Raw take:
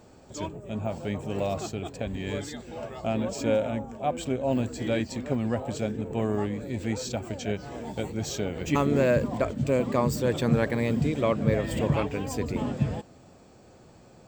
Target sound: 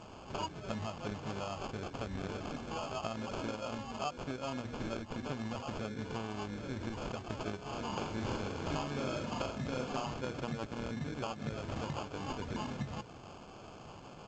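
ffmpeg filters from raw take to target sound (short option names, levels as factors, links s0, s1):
-filter_complex "[0:a]lowshelf=f=750:t=q:w=1.5:g=-7,bandreject=f=60:t=h:w=6,bandreject=f=120:t=h:w=6,bandreject=f=180:t=h:w=6,bandreject=f=240:t=h:w=6,bandreject=f=300:t=h:w=6,bandreject=f=360:t=h:w=6,bandreject=f=420:t=h:w=6,bandreject=f=480:t=h:w=6,bandreject=f=540:t=h:w=6,acompressor=threshold=0.00708:ratio=16,acrusher=samples=23:mix=1:aa=0.000001,asplit=3[s0][s1][s2];[s0]afade=t=out:st=7.91:d=0.02[s3];[s1]aecho=1:1:40|84|132.4|185.6|244.2:0.631|0.398|0.251|0.158|0.1,afade=t=in:st=7.91:d=0.02,afade=t=out:st=10.12:d=0.02[s4];[s2]afade=t=in:st=10.12:d=0.02[s5];[s3][s4][s5]amix=inputs=3:normalize=0,volume=2.51" -ar 16000 -c:a g722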